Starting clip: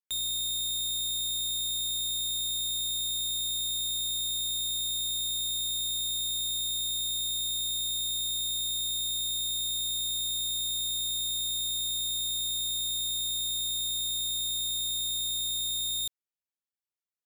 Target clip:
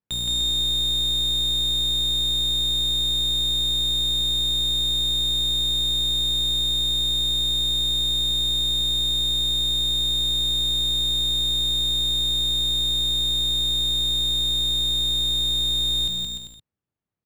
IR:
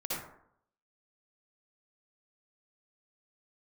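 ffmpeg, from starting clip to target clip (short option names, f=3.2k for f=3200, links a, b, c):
-filter_complex "[0:a]equalizer=f=120:t=o:w=2.9:g=15,adynamicsmooth=sensitivity=7:basefreq=2.2k,asplit=2[a][b];[b]aecho=0:1:170|297.5|393.1|464.8|518.6:0.631|0.398|0.251|0.158|0.1[c];[a][c]amix=inputs=2:normalize=0,volume=7dB"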